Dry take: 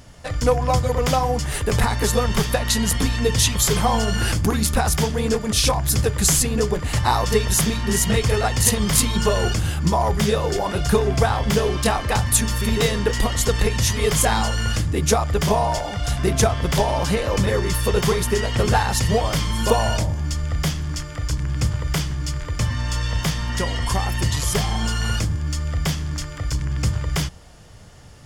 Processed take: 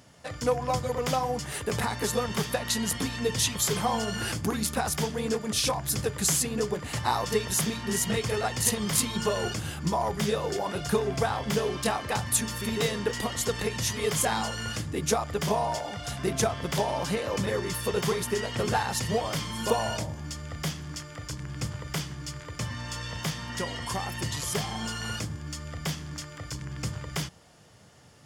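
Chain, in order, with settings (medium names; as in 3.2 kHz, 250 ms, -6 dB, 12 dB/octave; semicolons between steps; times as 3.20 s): high-pass 130 Hz 12 dB/octave; trim -7 dB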